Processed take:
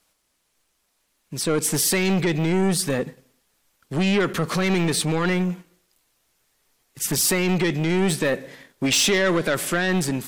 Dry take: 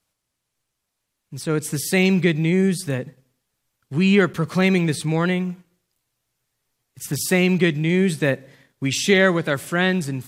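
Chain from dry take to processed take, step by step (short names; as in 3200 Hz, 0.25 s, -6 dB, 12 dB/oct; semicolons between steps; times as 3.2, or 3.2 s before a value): limiter -14 dBFS, peak gain reduction 9.5 dB; soft clip -22 dBFS, distortion -12 dB; bell 110 Hz -12.5 dB 1 oct; gain +8.5 dB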